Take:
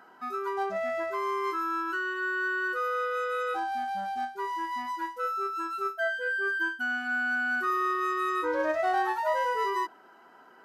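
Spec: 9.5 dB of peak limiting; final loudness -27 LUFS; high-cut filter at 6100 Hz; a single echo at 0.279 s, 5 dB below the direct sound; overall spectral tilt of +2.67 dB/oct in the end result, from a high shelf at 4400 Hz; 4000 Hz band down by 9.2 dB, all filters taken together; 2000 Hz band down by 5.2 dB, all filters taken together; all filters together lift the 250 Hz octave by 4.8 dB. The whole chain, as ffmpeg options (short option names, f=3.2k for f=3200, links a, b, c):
-af "lowpass=6.1k,equalizer=f=250:t=o:g=7.5,equalizer=f=2k:t=o:g=-6.5,equalizer=f=4k:t=o:g=-7.5,highshelf=f=4.4k:g=-4,alimiter=level_in=2dB:limit=-24dB:level=0:latency=1,volume=-2dB,aecho=1:1:279:0.562,volume=5.5dB"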